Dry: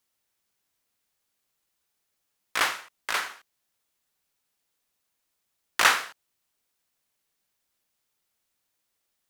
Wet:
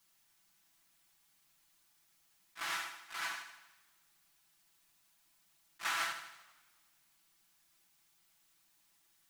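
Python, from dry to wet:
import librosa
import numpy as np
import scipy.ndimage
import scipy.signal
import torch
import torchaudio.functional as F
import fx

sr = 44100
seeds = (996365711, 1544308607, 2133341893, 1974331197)

p1 = fx.peak_eq(x, sr, hz=480.0, db=-15.0, octaves=0.41)
p2 = p1 + 0.93 * np.pad(p1, (int(6.0 * sr / 1000.0), 0))[:len(p1)]
p3 = fx.over_compress(p2, sr, threshold_db=-32.0, ratio=-1.0)
p4 = p2 + (p3 * librosa.db_to_amplitude(-1.0))
p5 = fx.auto_swell(p4, sr, attack_ms=410.0)
p6 = p5 + fx.echo_feedback(p5, sr, ms=79, feedback_pct=53, wet_db=-9, dry=0)
p7 = fx.echo_warbled(p6, sr, ms=94, feedback_pct=69, rate_hz=2.8, cents=194, wet_db=-22.5)
y = p7 * librosa.db_to_amplitude(-6.5)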